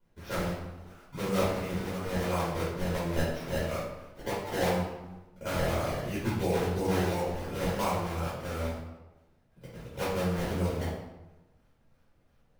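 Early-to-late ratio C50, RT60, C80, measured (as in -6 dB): 0.0 dB, 1.1 s, 4.0 dB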